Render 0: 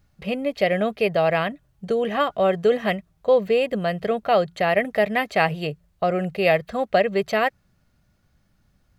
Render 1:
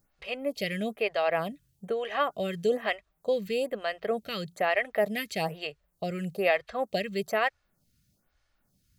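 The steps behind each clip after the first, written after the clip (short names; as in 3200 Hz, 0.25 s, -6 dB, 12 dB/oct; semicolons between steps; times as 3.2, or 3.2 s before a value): high shelf 3200 Hz +10.5 dB; photocell phaser 1.1 Hz; gain -5.5 dB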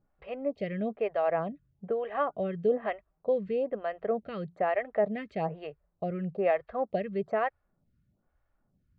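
LPF 1200 Hz 12 dB/oct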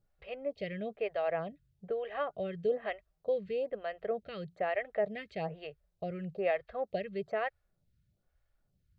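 graphic EQ 250/1000/4000 Hz -11/-9/+5 dB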